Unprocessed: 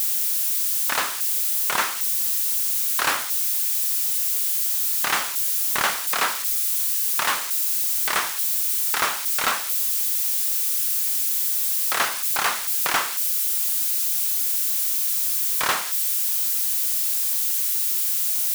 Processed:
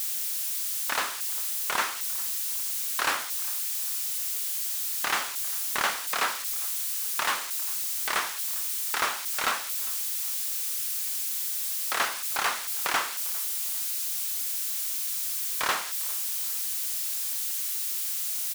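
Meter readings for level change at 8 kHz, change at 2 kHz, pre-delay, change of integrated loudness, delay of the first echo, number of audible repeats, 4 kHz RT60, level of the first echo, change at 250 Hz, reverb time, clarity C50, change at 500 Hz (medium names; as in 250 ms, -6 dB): -6.0 dB, -4.0 dB, no reverb, -7.0 dB, 401 ms, 2, no reverb, -22.0 dB, -5.0 dB, no reverb, no reverb, -4.0 dB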